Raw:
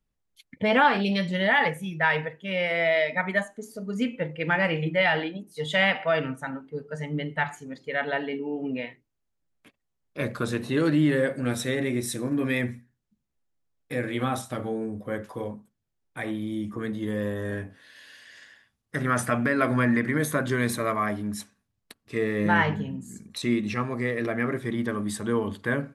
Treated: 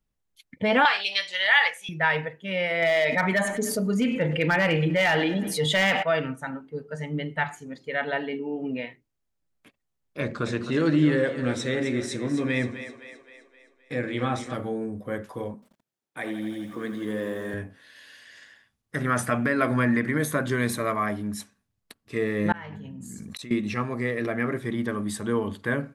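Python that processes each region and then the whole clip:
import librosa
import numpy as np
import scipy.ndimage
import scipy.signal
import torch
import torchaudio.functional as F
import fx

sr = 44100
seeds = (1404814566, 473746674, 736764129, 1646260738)

y = fx.chain(x, sr, fx.bandpass_edges(low_hz=720.0, high_hz=5400.0),
    fx.tilt_eq(slope=4.5), at=(0.85, 1.89))
y = fx.chain(y, sr, fx.overload_stage(gain_db=17.5),
    fx.echo_feedback(ms=100, feedback_pct=50, wet_db=-24.0),
    fx.env_flatten(amount_pct=70), at=(2.82, 6.03))
y = fx.chain(y, sr, fx.lowpass(hz=7600.0, slope=24),
    fx.echo_split(split_hz=400.0, low_ms=84, high_ms=260, feedback_pct=52, wet_db=-10), at=(10.2, 14.54))
y = fx.chain(y, sr, fx.highpass(hz=200.0, slope=12),
    fx.echo_crushed(ms=84, feedback_pct=80, bits=9, wet_db=-10.5), at=(15.54, 17.54))
y = fx.chain(y, sr, fx.peak_eq(hz=370.0, db=-4.5, octaves=0.35),
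    fx.gate_flip(shuts_db=-27.0, range_db=-40),
    fx.env_flatten(amount_pct=100), at=(22.52, 23.51))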